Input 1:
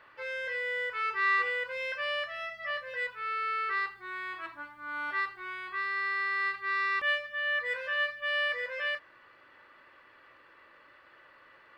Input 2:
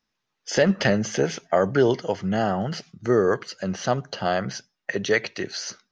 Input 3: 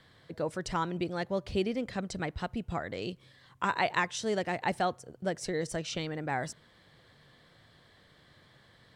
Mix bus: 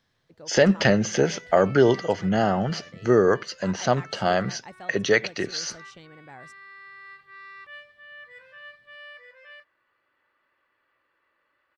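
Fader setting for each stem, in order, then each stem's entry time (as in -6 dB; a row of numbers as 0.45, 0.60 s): -14.5, +1.5, -13.0 dB; 0.65, 0.00, 0.00 s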